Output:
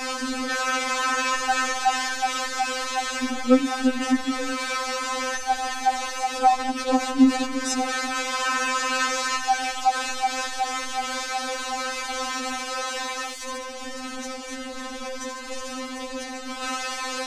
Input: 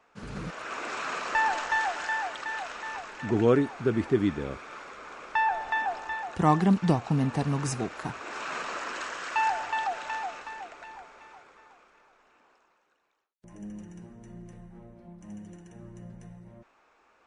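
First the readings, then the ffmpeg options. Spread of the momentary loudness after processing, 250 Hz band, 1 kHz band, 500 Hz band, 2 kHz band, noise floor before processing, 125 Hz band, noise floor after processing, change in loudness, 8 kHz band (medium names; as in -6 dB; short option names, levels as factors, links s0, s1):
12 LU, +5.0 dB, +6.5 dB, +2.0 dB, +6.0 dB, -66 dBFS, under -20 dB, -35 dBFS, +3.5 dB, +16.0 dB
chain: -af "aeval=exprs='val(0)+0.5*0.0447*sgn(val(0))':c=same,lowpass=f=6900:t=q:w=1.5,afftfilt=real='re*3.46*eq(mod(b,12),0)':imag='im*3.46*eq(mod(b,12),0)':win_size=2048:overlap=0.75,volume=1.88"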